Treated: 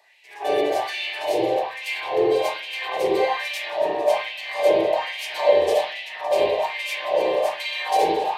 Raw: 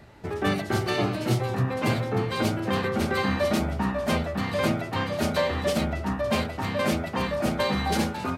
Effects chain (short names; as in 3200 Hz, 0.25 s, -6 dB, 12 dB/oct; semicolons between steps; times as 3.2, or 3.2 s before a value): fixed phaser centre 560 Hz, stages 4; spring tank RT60 1.6 s, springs 37/48 ms, chirp 60 ms, DRR -8 dB; LFO high-pass sine 1.2 Hz 360–2500 Hz; gain -1.5 dB